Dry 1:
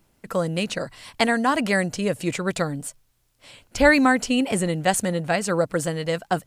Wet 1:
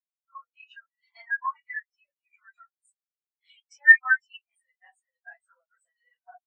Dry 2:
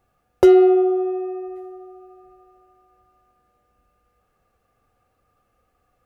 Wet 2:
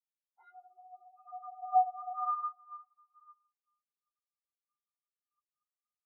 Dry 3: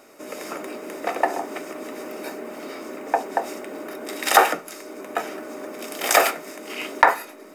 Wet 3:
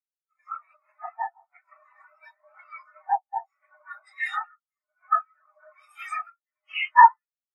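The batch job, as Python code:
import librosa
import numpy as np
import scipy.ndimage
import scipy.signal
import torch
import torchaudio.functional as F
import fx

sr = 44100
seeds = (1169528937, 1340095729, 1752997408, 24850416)

y = fx.phase_scramble(x, sr, seeds[0], window_ms=100)
y = fx.recorder_agc(y, sr, target_db=-4.5, rise_db_per_s=37.0, max_gain_db=30)
y = scipy.signal.sosfilt(scipy.signal.butter(4, 900.0, 'highpass', fs=sr, output='sos'), y)
y = fx.spectral_expand(y, sr, expansion=4.0)
y = y * librosa.db_to_amplitude(-1.5)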